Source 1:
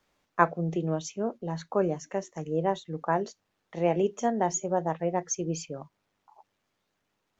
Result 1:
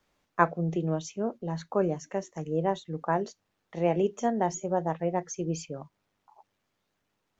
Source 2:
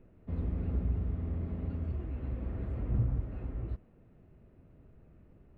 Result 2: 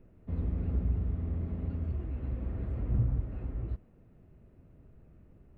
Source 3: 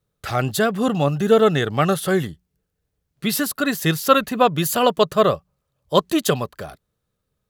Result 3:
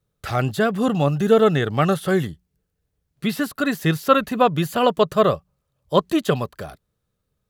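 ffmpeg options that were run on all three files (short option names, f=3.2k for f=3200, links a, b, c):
-filter_complex "[0:a]acrossover=split=3200[a][b];[b]acompressor=threshold=-34dB:ratio=4:attack=1:release=60[c];[a][c]amix=inputs=2:normalize=0,lowshelf=f=210:g=3,volume=-1dB"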